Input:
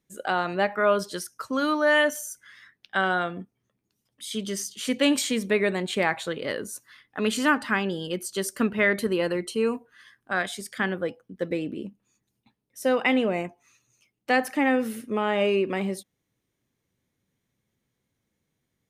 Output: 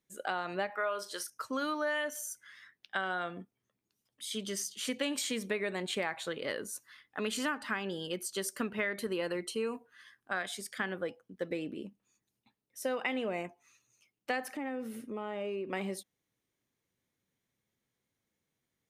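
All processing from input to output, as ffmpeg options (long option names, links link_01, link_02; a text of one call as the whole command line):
ffmpeg -i in.wav -filter_complex "[0:a]asettb=1/sr,asplit=3[link_01][link_02][link_03];[link_01]atrim=end=0.704[link_04];[link_02]atrim=start=0.7:end=1.3,asetpts=PTS-STARTPTS,afade=type=in:duration=0.004:curve=qsin,afade=type=out:start_time=0.596:duration=0.004:curve=qsin,highpass=440,asplit=2[link_05][link_06];[link_06]adelay=40,volume=-12.5dB[link_07];[link_05][link_07]amix=inputs=2:normalize=0,atrim=end_sample=26460[link_08];[link_03]atrim=start=1.296[link_09];[link_04][link_08]acrossfade=duration=0.004:curve1=hsin:curve2=qsin[link_10];[link_10][link_09]acrossfade=duration=0.004:curve1=qsin:curve2=hsin,asettb=1/sr,asplit=3[link_11][link_12][link_13];[link_11]atrim=end=14.534[link_14];[link_12]atrim=start=14.53:end=15.73,asetpts=PTS-STARTPTS,afade=type=in:duration=0.004:curve=qsin,afade=type=out:start_time=1.196:duration=0.004:curve=qsin,tiltshelf=frequency=880:gain=4.5,bandreject=frequency=1700:width=23,acompressor=threshold=-32dB:ratio=2.5:attack=3.2:release=140:knee=1:detection=peak[link_15];[link_13]atrim=start=15.726[link_16];[link_14][link_15]acrossfade=duration=0.004:curve1=hsin:curve2=qsin[link_17];[link_17][link_16]acrossfade=duration=0.004:curve1=qsin:curve2=hsin,lowshelf=frequency=290:gain=-7,acompressor=threshold=-26dB:ratio=6,volume=-4dB" out.wav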